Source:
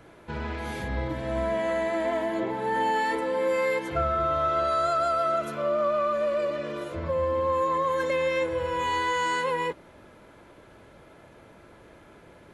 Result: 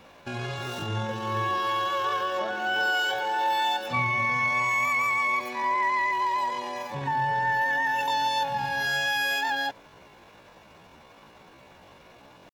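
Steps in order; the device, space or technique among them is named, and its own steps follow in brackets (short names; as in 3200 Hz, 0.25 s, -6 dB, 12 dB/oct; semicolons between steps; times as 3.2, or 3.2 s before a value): chipmunk voice (pitch shift +9 st)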